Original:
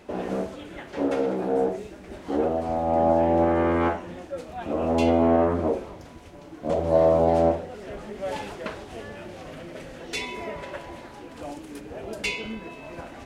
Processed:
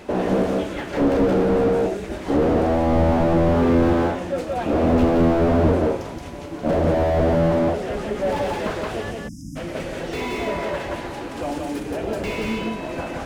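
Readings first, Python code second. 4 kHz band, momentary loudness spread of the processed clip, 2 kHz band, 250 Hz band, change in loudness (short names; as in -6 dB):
+3.5 dB, 12 LU, +5.0 dB, +7.0 dB, +3.5 dB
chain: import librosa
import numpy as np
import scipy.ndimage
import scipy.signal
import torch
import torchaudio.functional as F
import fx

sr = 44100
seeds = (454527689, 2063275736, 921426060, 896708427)

p1 = fx.spec_erase(x, sr, start_s=9.11, length_s=0.45, low_hz=310.0, high_hz=4900.0)
p2 = p1 + fx.echo_single(p1, sr, ms=174, db=-3.5, dry=0)
p3 = fx.slew_limit(p2, sr, full_power_hz=24.0)
y = p3 * 10.0 ** (9.0 / 20.0)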